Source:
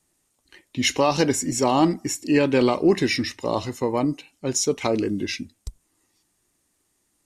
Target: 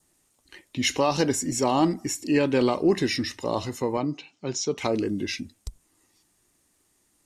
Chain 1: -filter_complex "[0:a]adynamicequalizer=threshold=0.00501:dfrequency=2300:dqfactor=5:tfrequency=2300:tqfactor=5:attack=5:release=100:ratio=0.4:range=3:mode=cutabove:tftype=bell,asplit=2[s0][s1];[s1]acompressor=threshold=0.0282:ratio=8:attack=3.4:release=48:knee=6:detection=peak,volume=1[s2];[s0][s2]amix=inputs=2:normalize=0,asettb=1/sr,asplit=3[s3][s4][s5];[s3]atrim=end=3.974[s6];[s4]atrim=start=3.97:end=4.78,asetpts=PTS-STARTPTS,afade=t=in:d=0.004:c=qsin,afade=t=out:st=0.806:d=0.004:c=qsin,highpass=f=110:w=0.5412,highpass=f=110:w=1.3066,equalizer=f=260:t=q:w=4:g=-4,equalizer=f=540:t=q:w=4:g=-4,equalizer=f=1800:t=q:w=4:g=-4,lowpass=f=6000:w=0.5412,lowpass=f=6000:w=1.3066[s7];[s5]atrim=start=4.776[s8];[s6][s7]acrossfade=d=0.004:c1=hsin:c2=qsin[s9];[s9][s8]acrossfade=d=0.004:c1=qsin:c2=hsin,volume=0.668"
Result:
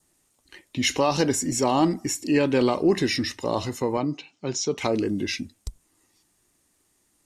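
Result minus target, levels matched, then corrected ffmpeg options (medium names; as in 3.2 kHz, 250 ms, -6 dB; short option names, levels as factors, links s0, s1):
compression: peak gain reduction -9 dB
-filter_complex "[0:a]adynamicequalizer=threshold=0.00501:dfrequency=2300:dqfactor=5:tfrequency=2300:tqfactor=5:attack=5:release=100:ratio=0.4:range=3:mode=cutabove:tftype=bell,asplit=2[s0][s1];[s1]acompressor=threshold=0.00891:ratio=8:attack=3.4:release=48:knee=6:detection=peak,volume=1[s2];[s0][s2]amix=inputs=2:normalize=0,asettb=1/sr,asplit=3[s3][s4][s5];[s3]atrim=end=3.974[s6];[s4]atrim=start=3.97:end=4.78,asetpts=PTS-STARTPTS,afade=t=in:d=0.004:c=qsin,afade=t=out:st=0.806:d=0.004:c=qsin,highpass=f=110:w=0.5412,highpass=f=110:w=1.3066,equalizer=f=260:t=q:w=4:g=-4,equalizer=f=540:t=q:w=4:g=-4,equalizer=f=1800:t=q:w=4:g=-4,lowpass=f=6000:w=0.5412,lowpass=f=6000:w=1.3066[s7];[s5]atrim=start=4.776[s8];[s6][s7]acrossfade=d=0.004:c1=hsin:c2=qsin[s9];[s9][s8]acrossfade=d=0.004:c1=qsin:c2=hsin,volume=0.668"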